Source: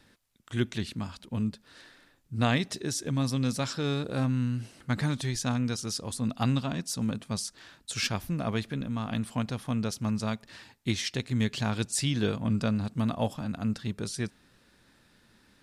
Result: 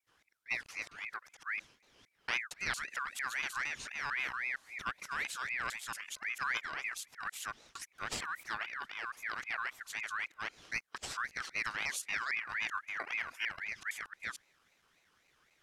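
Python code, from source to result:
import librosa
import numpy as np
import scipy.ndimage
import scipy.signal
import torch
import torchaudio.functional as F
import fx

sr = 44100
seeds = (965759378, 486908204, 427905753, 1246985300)

y = fx.local_reverse(x, sr, ms=228.0)
y = fx.ring_lfo(y, sr, carrier_hz=1800.0, swing_pct=30, hz=3.8)
y = y * librosa.db_to_amplitude(-6.5)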